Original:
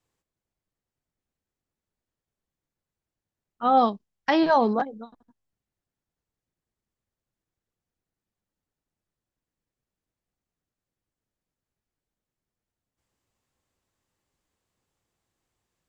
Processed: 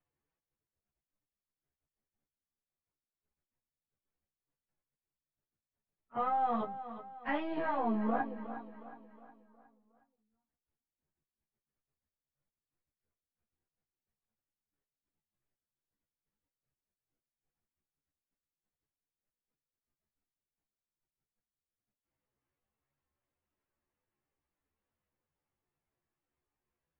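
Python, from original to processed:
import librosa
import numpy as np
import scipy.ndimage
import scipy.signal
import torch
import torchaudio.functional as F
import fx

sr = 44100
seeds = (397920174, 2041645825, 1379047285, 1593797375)

p1 = np.where(x < 0.0, 10.0 ** (-3.0 / 20.0) * x, x)
p2 = scipy.signal.sosfilt(scipy.signal.butter(4, 2600.0, 'lowpass', fs=sr, output='sos'), p1)
p3 = fx.hum_notches(p2, sr, base_hz=60, count=3)
p4 = fx.level_steps(p3, sr, step_db=15)
p5 = fx.stretch_vocoder_free(p4, sr, factor=1.7)
p6 = fx.doubler(p5, sr, ms=14.0, db=-5.0)
y = p6 + fx.echo_feedback(p6, sr, ms=363, feedback_pct=47, wet_db=-12.5, dry=0)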